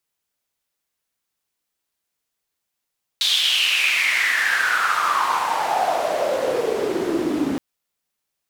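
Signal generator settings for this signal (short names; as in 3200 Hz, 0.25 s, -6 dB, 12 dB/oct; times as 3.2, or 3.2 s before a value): swept filtered noise white, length 4.37 s bandpass, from 3700 Hz, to 260 Hz, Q 6.9, exponential, gain ramp +7 dB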